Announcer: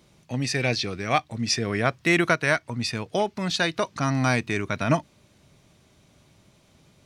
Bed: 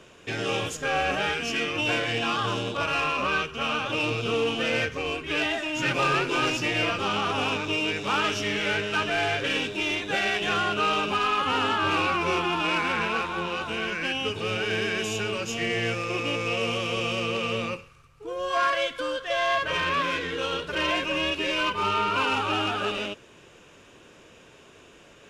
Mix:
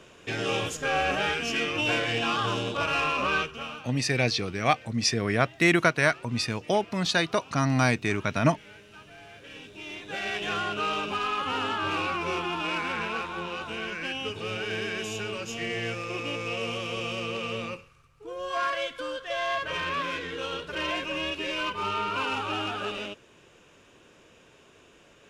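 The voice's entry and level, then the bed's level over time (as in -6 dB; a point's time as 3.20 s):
3.55 s, -0.5 dB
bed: 3.43 s -0.5 dB
4.03 s -23.5 dB
9.24 s -23.5 dB
10.37 s -4.5 dB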